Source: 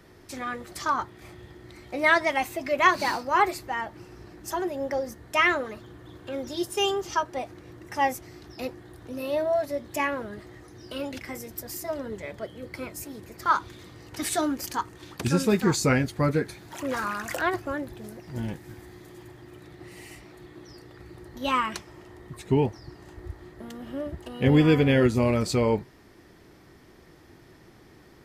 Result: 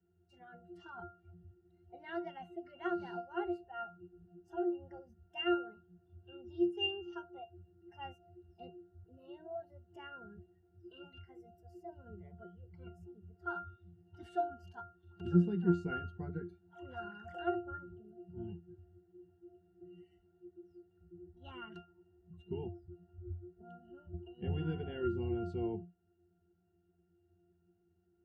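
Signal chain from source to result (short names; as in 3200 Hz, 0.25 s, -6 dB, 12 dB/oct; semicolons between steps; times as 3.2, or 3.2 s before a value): octave resonator F, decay 0.33 s; spectral noise reduction 13 dB; gain +3.5 dB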